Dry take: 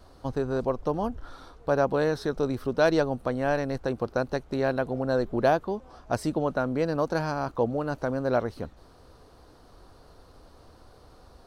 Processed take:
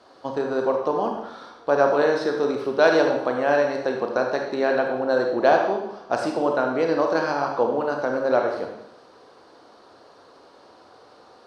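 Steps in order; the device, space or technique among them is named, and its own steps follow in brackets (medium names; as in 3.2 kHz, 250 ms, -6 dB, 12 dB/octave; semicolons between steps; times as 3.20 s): supermarket ceiling speaker (band-pass 320–5600 Hz; reverberation RT60 0.80 s, pre-delay 28 ms, DRR 1.5 dB); trim +4.5 dB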